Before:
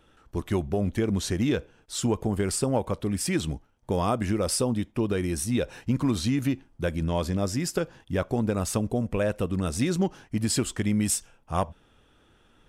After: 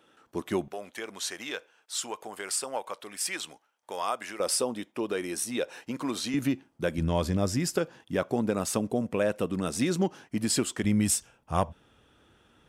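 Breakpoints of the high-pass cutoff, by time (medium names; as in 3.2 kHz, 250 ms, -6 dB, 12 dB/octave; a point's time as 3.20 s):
230 Hz
from 0.68 s 820 Hz
from 4.40 s 380 Hz
from 6.34 s 170 Hz
from 6.98 s 55 Hz
from 7.76 s 180 Hz
from 10.84 s 60 Hz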